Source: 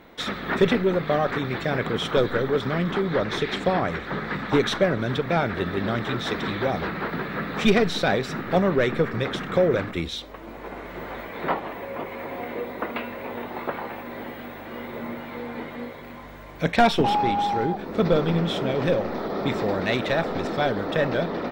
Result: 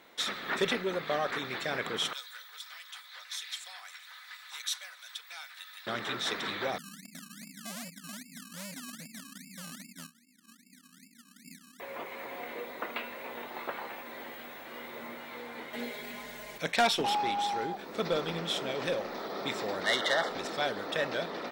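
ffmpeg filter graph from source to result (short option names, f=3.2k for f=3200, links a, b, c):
-filter_complex "[0:a]asettb=1/sr,asplit=3[a][b][c];[a]atrim=end=2.134[d];[b]atrim=start=2.13:end=5.87,asetpts=PTS-STARTPTS,afade=t=in:d=0.004:c=qsin,afade=t=out:st=3.736:d=0.004:c=qsin,highpass=f=750:w=0.5412,highpass=f=750:w=1.3066,aderivative,aecho=1:1:4:0.34,atrim=end_sample=164934[e];[c]atrim=start=5.866[f];[d][e]acrossfade=d=0.004:c1=hsin:c2=qsin[g];[g][f]acrossfade=d=0.004:c1=qsin:c2=hsin,asettb=1/sr,asplit=3[h][i][j];[h]atrim=end=6.784[k];[i]atrim=start=6.78:end=11.8,asetpts=PTS-STARTPTS,afade=t=in:d=0.004:c=qsin,afade=t=out:st=5.016:d=0.004:c=qsin,asuperpass=centerf=210:order=8:qfactor=2.1,acrusher=samples=25:mix=1:aa=0.000001:lfo=1:lforange=15:lforate=2.5,volume=29.5dB,asoftclip=hard,volume=-29.5dB[l];[j]atrim=start=11.796[m];[k][l]acrossfade=d=0.004:c1=hsin:c2=qsin[n];[n][m]acrossfade=d=0.004:c1=qsin:c2=hsin,asettb=1/sr,asplit=3[o][p][q];[o]atrim=end=15.734[r];[p]atrim=start=15.73:end=16.58,asetpts=PTS-STARTPTS,afade=t=in:d=0.004:c=qsin,afade=t=out:st=0.846:d=0.004:c=qsin,equalizer=f=1.1k:t=o:w=0.69:g=-7.5,aecho=1:1:4.8:0.94,atrim=end_sample=37485,acontrast=27[s];[q]atrim=start=16.576[t];[r][s]acrossfade=d=0.004:c1=hsin:c2=qsin[u];[u][t]acrossfade=d=0.004:c1=qsin:c2=hsin,asettb=1/sr,asplit=3[v][w][x];[v]atrim=end=19.844[y];[w]atrim=start=19.84:end=20.29,asetpts=PTS-STARTPTS,afade=t=in:d=0.004:c=qsin,afade=t=out:st=0.446:d=0.004:c=qsin,asplit=2[z][aa];[aa]highpass=f=720:p=1,volume=12dB,asoftclip=type=tanh:threshold=-10dB[ab];[z][ab]amix=inputs=2:normalize=0,lowpass=f=4.4k:p=1,volume=-6dB,asuperstop=centerf=2500:order=20:qfactor=4.2[ac];[x]atrim=start=20.286[ad];[y][ac]acrossfade=d=0.004:c1=hsin:c2=qsin[ae];[ae][ad]acrossfade=d=0.004:c1=qsin:c2=hsin,lowpass=9.7k,aemphasis=mode=production:type=riaa,volume=-7dB"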